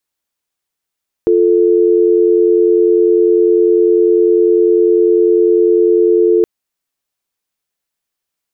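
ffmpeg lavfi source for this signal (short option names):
-f lavfi -i "aevalsrc='0.316*(sin(2*PI*350*t)+sin(2*PI*440*t))':d=5.17:s=44100"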